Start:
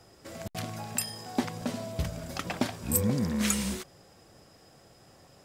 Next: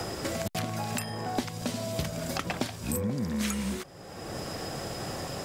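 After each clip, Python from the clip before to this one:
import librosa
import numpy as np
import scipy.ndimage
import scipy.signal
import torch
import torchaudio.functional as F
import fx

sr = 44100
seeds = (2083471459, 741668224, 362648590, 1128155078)

y = fx.band_squash(x, sr, depth_pct=100)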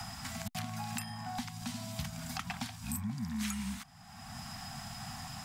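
y = scipy.signal.sosfilt(scipy.signal.ellip(3, 1.0, 40, [240.0, 740.0], 'bandstop', fs=sr, output='sos'), x)
y = F.gain(torch.from_numpy(y), -5.5).numpy()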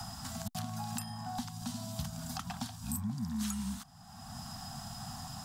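y = fx.peak_eq(x, sr, hz=2200.0, db=-13.5, octaves=0.72)
y = F.gain(torch.from_numpy(y), 1.0).numpy()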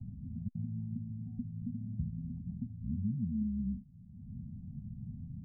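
y = scipy.signal.sosfilt(scipy.signal.cheby2(4, 70, 1100.0, 'lowpass', fs=sr, output='sos'), x)
y = F.gain(torch.from_numpy(y), 3.0).numpy()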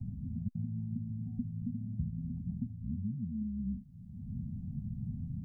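y = fx.rider(x, sr, range_db=4, speed_s=0.5)
y = F.gain(torch.from_numpy(y), 1.0).numpy()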